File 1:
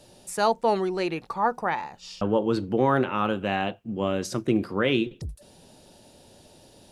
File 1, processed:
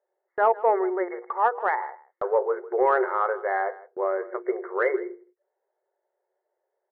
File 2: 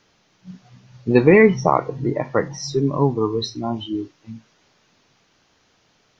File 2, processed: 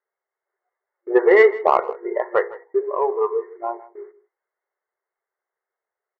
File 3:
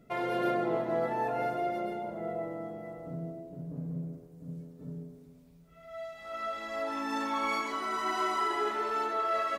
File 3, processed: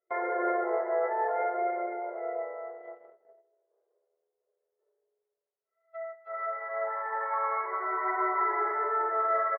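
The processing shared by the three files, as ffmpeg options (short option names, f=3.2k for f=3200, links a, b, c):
-filter_complex "[0:a]bandreject=f=60:t=h:w=6,bandreject=f=120:t=h:w=6,bandreject=f=180:t=h:w=6,bandreject=f=240:t=h:w=6,bandreject=f=300:t=h:w=6,bandreject=f=360:t=h:w=6,bandreject=f=420:t=h:w=6,bandreject=f=480:t=h:w=6,afftfilt=real='re*between(b*sr/4096,350,2200)':imag='im*between(b*sr/4096,350,2200)':win_size=4096:overlap=0.75,agate=range=-25dB:threshold=-43dB:ratio=16:detection=peak,asplit=2[a][b];[b]asoftclip=type=tanh:threshold=-12.5dB,volume=-4.5dB[c];[a][c]amix=inputs=2:normalize=0,aecho=1:1:158:0.112,volume=-1.5dB"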